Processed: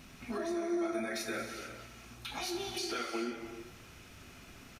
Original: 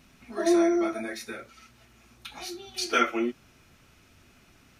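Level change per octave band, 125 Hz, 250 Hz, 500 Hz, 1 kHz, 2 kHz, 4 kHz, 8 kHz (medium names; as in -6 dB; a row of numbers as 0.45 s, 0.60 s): +2.0 dB, -9.5 dB, -9.0 dB, -9.5 dB, -8.0 dB, -4.5 dB, -5.0 dB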